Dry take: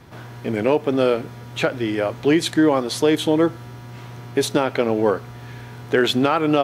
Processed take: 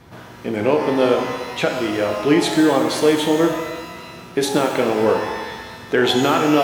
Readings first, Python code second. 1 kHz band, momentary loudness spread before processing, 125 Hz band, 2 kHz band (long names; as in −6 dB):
+3.5 dB, 19 LU, −1.5 dB, +3.0 dB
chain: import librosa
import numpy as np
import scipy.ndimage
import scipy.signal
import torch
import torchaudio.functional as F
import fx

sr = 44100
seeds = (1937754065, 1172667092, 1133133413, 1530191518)

y = fx.rev_shimmer(x, sr, seeds[0], rt60_s=1.3, semitones=12, shimmer_db=-8, drr_db=3.0)